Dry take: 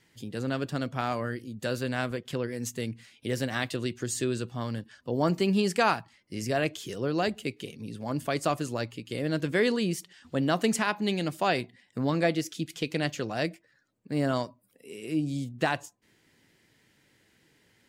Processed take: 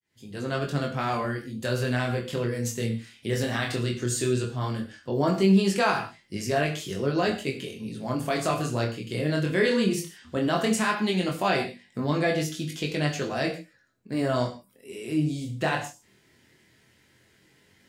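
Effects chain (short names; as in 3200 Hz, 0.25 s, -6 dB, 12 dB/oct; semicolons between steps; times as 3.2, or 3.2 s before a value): opening faded in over 0.53 s; non-linear reverb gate 0.18 s falling, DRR 4 dB; in parallel at +2.5 dB: limiter -18 dBFS, peak gain reduction 8.5 dB; on the sum: chorus 0.16 Hz, delay 20 ms, depth 6.4 ms; gain -2 dB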